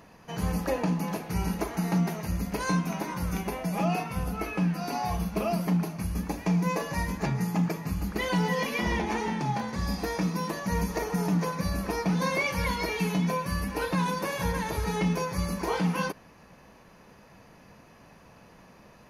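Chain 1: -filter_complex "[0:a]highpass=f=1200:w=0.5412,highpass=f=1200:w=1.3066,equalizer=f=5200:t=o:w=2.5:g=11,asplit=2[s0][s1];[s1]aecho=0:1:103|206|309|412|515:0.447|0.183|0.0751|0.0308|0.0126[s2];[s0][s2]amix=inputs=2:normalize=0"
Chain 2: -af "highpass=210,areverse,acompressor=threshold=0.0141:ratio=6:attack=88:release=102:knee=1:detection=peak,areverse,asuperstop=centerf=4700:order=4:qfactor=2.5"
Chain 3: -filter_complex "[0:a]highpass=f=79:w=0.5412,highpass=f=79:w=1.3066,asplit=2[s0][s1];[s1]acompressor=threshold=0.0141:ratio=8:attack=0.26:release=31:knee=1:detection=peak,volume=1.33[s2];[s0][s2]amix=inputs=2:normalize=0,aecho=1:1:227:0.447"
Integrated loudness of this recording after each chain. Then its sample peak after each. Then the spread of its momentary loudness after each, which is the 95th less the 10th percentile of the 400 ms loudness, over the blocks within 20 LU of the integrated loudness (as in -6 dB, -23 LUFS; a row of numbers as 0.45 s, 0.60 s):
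-29.5 LUFS, -35.5 LUFS, -26.0 LUFS; -11.5 dBFS, -21.0 dBFS, -13.5 dBFS; 10 LU, 21 LU, 21 LU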